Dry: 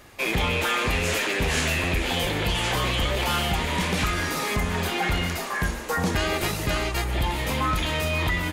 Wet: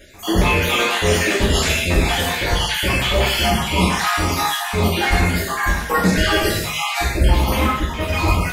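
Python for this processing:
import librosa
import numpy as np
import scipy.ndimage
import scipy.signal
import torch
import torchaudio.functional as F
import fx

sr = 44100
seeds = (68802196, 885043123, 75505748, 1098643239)

y = fx.spec_dropout(x, sr, seeds[0], share_pct=55)
y = fx.high_shelf(y, sr, hz=2100.0, db=-11.0, at=(7.66, 8.08))
y = fx.rev_gated(y, sr, seeds[1], gate_ms=250, shape='falling', drr_db=-7.0)
y = F.gain(torch.from_numpy(y), 2.5).numpy()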